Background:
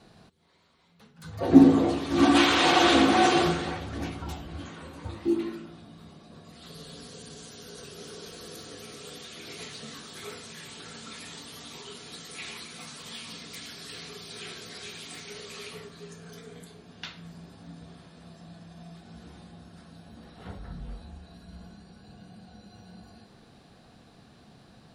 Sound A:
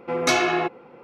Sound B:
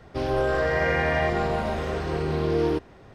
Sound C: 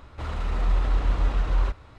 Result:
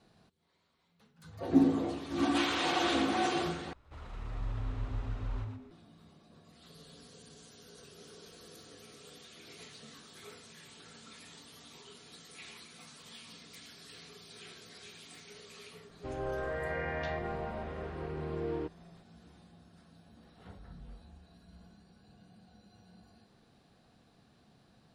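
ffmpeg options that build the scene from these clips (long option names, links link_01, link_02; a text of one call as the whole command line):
ffmpeg -i bed.wav -i cue0.wav -i cue1.wav -i cue2.wav -filter_complex "[0:a]volume=-10dB[link_01];[3:a]asplit=5[link_02][link_03][link_04][link_05][link_06];[link_03]adelay=119,afreqshift=-150,volume=-5dB[link_07];[link_04]adelay=238,afreqshift=-300,volume=-15.2dB[link_08];[link_05]adelay=357,afreqshift=-450,volume=-25.3dB[link_09];[link_06]adelay=476,afreqshift=-600,volume=-35.5dB[link_10];[link_02][link_07][link_08][link_09][link_10]amix=inputs=5:normalize=0[link_11];[2:a]lowpass=2700[link_12];[link_01]asplit=2[link_13][link_14];[link_13]atrim=end=3.734[link_15];[link_11]atrim=end=1.98,asetpts=PTS-STARTPTS,volume=-15.5dB[link_16];[link_14]atrim=start=5.706[link_17];[link_12]atrim=end=3.14,asetpts=PTS-STARTPTS,volume=-12.5dB,afade=type=in:duration=0.004:curve=hsin,afade=type=out:start_time=3.136:duration=0.004:curve=hsin,adelay=15890[link_18];[link_15][link_16]acrossfade=duration=0.004:curve1=hsin:curve2=hsin[link_19];[link_19][link_17]acrossfade=duration=0.004:curve1=hsin:curve2=hsin[link_20];[link_20][link_18]amix=inputs=2:normalize=0" out.wav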